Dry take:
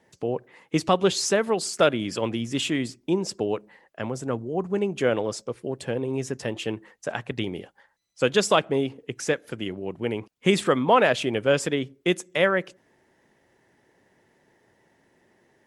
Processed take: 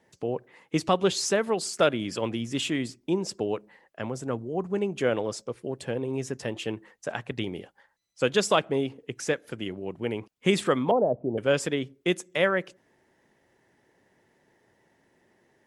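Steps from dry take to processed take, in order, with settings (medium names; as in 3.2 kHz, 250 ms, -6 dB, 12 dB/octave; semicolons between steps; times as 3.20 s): 10.91–11.38 s: steep low-pass 790 Hz 36 dB/octave; trim -2.5 dB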